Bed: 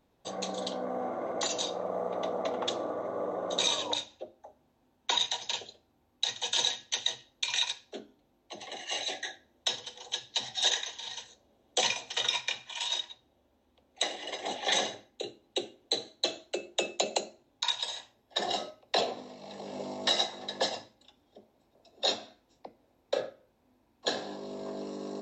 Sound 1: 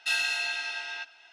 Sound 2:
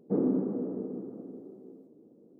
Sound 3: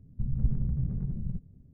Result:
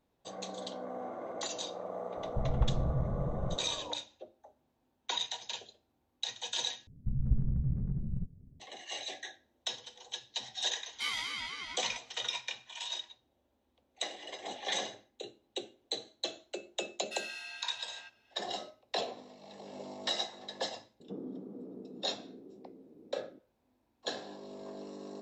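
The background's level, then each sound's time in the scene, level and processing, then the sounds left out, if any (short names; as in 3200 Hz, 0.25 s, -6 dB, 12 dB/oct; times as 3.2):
bed -6.5 dB
2.17 add 3 -2.5 dB
6.87 replace with 3 -2 dB
10.94 add 1 -5.5 dB + ring modulator with a swept carrier 530 Hz, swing 25%, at 4 Hz
17.05 add 1 -14.5 dB
21 add 2 -12.5 dB + three-band squash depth 70%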